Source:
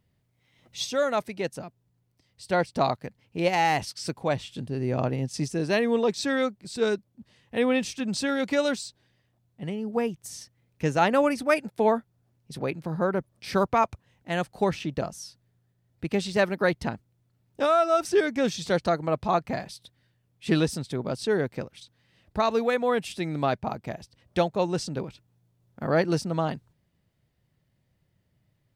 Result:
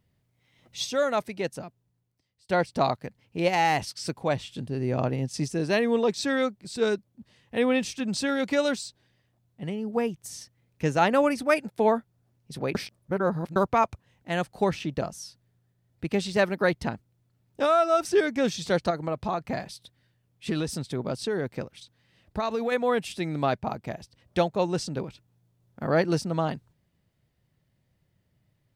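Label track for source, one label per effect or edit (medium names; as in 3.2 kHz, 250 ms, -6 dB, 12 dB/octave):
1.600000	2.490000	fade out, to -23.5 dB
12.750000	13.560000	reverse
18.900000	22.720000	compression, threshold -23 dBFS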